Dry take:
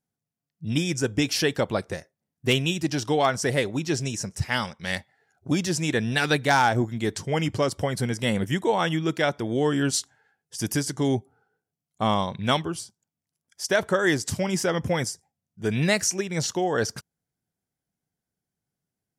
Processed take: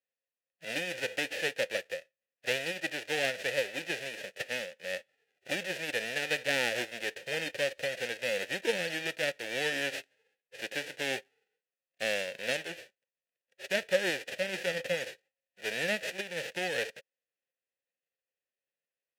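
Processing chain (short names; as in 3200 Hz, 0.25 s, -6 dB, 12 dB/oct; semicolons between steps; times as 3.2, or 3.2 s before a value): spectral whitening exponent 0.1; vowel filter e; gain +8 dB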